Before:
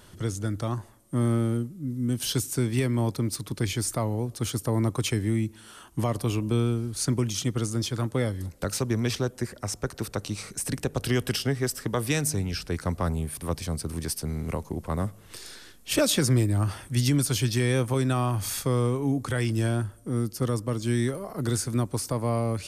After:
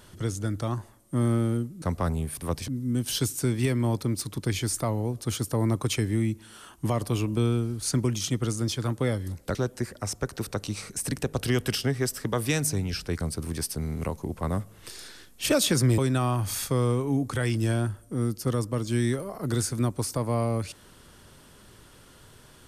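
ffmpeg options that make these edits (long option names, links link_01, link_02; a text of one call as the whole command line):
ffmpeg -i in.wav -filter_complex "[0:a]asplit=6[link_01][link_02][link_03][link_04][link_05][link_06];[link_01]atrim=end=1.822[link_07];[link_02]atrim=start=12.818:end=13.682[link_08];[link_03]atrim=start=1.818:end=8.692[link_09];[link_04]atrim=start=9.158:end=12.822[link_10];[link_05]atrim=start=13.678:end=16.452[link_11];[link_06]atrim=start=17.928[link_12];[link_07][link_08]acrossfade=duration=0.004:curve1=hsin:curve2=hsin[link_13];[link_13][link_09]acrossfade=duration=0.004:curve1=hsin:curve2=hsin[link_14];[link_14][link_10]acrossfade=duration=0.004:curve1=hsin:curve2=hsin[link_15];[link_15][link_11]acrossfade=duration=0.004:curve1=hsin:curve2=hsin[link_16];[link_16][link_12]acrossfade=duration=0.004:curve1=hsin:curve2=hsin" out.wav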